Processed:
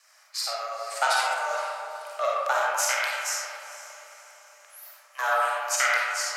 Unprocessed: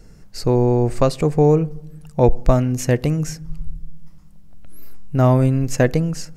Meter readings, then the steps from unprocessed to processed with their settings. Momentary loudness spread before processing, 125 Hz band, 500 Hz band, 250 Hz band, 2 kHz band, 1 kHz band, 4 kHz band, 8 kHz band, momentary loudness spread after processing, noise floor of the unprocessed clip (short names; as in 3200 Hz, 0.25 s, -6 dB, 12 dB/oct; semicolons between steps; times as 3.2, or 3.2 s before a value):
19 LU, under -40 dB, -13.0 dB, under -40 dB, +8.5 dB, +1.0 dB, +5.5 dB, +5.0 dB, 19 LU, -43 dBFS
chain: steep high-pass 880 Hz 96 dB/oct; harmonic-percussive split harmonic -6 dB; ring modulator 290 Hz; vibrato 5.2 Hz 29 cents; diffused feedback echo 0.476 s, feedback 47%, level -15 dB; digital reverb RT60 2.2 s, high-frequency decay 0.35×, pre-delay 10 ms, DRR -5 dB; gain +5 dB